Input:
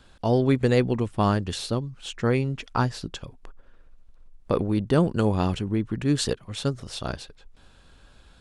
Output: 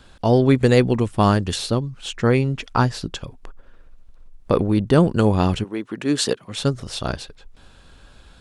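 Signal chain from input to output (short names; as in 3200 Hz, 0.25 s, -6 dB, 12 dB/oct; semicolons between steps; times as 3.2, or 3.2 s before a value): 0.56–1.56 high shelf 6600 Hz +5.5 dB; 5.63–6.56 HPF 500 Hz -> 140 Hz 12 dB/oct; gain +5.5 dB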